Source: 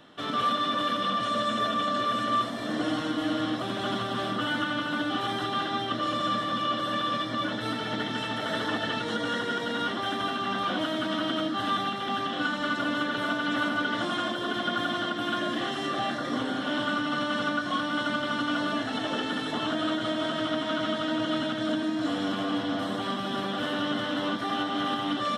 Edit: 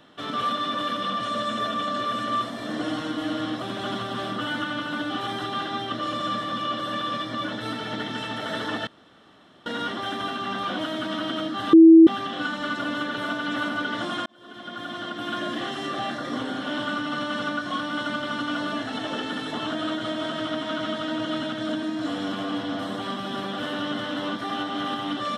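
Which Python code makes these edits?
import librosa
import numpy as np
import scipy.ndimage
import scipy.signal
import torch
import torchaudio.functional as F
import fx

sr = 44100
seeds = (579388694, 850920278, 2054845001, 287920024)

y = fx.edit(x, sr, fx.room_tone_fill(start_s=8.87, length_s=0.79),
    fx.bleep(start_s=11.73, length_s=0.34, hz=326.0, db=-6.5),
    fx.fade_in_span(start_s=14.26, length_s=1.16), tone=tone)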